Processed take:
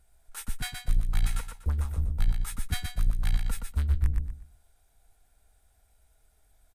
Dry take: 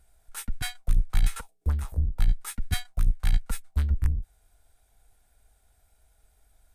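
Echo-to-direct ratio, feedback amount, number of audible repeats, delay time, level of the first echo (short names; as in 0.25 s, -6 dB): -5.0 dB, 27%, 3, 0.121 s, -5.5 dB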